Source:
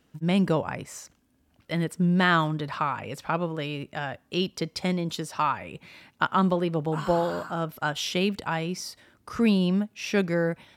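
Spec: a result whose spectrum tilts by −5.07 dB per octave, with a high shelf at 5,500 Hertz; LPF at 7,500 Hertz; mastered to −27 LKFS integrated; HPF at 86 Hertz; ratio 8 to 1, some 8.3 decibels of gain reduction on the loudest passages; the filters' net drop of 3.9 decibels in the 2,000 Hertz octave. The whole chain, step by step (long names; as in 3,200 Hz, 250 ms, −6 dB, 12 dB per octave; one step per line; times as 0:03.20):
high-pass filter 86 Hz
low-pass filter 7,500 Hz
parametric band 2,000 Hz −6 dB
high-shelf EQ 5,500 Hz +4.5 dB
downward compressor 8 to 1, threshold −27 dBFS
level +6.5 dB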